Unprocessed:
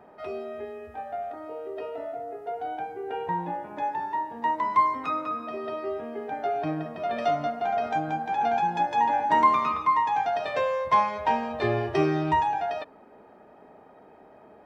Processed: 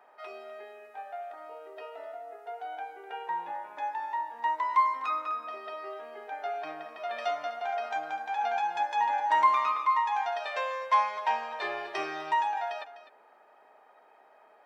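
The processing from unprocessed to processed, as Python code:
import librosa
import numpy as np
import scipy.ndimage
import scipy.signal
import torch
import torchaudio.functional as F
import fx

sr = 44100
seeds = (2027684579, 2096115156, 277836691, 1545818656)

y = scipy.signal.sosfilt(scipy.signal.butter(2, 870.0, 'highpass', fs=sr, output='sos'), x)
y = y + 10.0 ** (-14.0 / 20.0) * np.pad(y, (int(252 * sr / 1000.0), 0))[:len(y)]
y = F.gain(torch.from_numpy(y), -1.0).numpy()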